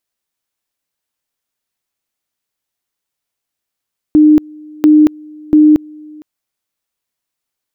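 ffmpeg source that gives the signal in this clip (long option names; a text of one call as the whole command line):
ffmpeg -f lavfi -i "aevalsrc='pow(10,(-3-27.5*gte(mod(t,0.69),0.23))/20)*sin(2*PI*304*t)':duration=2.07:sample_rate=44100" out.wav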